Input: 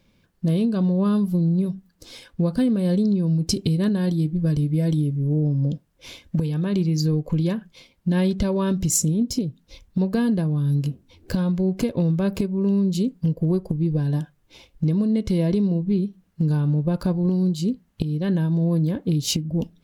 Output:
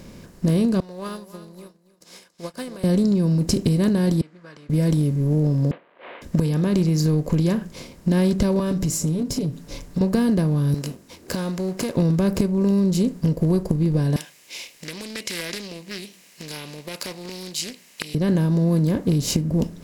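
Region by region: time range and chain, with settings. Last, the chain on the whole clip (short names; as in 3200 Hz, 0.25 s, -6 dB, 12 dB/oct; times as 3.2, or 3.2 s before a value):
0.8–2.84 HPF 860 Hz + feedback echo 0.279 s, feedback 21%, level -11.5 dB + upward expander 2.5:1, over -57 dBFS
4.21–4.7 ladder band-pass 1600 Hz, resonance 50% + air absorption 56 m
5.71–6.22 CVSD 16 kbps + HPF 550 Hz 24 dB/oct + air absorption 260 m
8.59–10.01 comb 6.9 ms, depth 79% + compressor 2:1, threshold -29 dBFS
10.74–11.97 HPF 1200 Hz 6 dB/oct + sample leveller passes 1
14.16–18.15 HPF 1300 Hz + resonant high shelf 1800 Hz +9.5 dB, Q 3 + Doppler distortion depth 0.26 ms
whole clip: per-bin compression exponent 0.6; bell 3300 Hz -7 dB 1.3 oct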